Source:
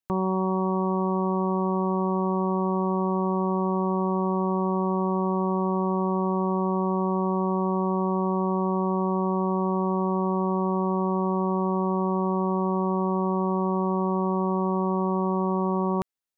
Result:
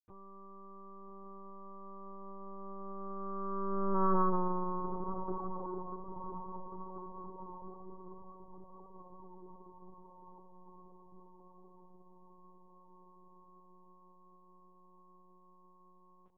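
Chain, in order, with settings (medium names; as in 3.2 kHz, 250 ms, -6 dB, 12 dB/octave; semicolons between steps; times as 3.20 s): Doppler pass-by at 4.14 s, 12 m/s, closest 2.5 m; echo that smears into a reverb 1224 ms, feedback 57%, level -11 dB; LPC vocoder at 8 kHz pitch kept; loudspeaker Doppler distortion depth 0.16 ms; trim -1.5 dB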